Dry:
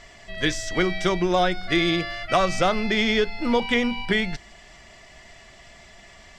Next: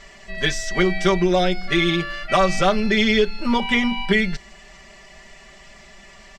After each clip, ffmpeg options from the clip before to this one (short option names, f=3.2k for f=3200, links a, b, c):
-af "aecho=1:1:5.1:0.88"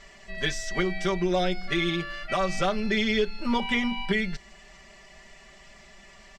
-af "alimiter=limit=-8.5dB:level=0:latency=1:release=398,volume=-5.5dB"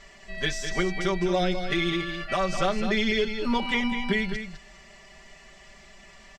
-af "aecho=1:1:205:0.376"